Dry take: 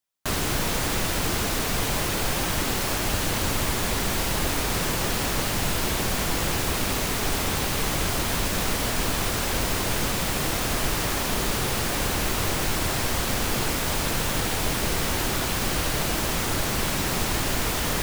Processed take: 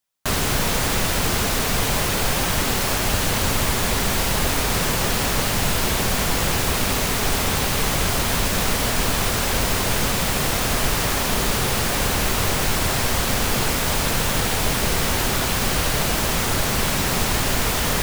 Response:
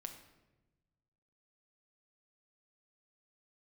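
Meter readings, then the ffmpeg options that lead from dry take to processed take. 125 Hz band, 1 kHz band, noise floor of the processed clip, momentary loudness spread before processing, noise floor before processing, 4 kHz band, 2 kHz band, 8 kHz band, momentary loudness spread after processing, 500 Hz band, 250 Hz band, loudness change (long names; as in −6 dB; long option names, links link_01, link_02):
+4.5 dB, +4.5 dB, −22 dBFS, 0 LU, −27 dBFS, +4.5 dB, +4.5 dB, +4.5 dB, 0 LU, +4.0 dB, +3.5 dB, +4.5 dB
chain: -af "equalizer=frequency=320:width=6.4:gain=-6,volume=4.5dB"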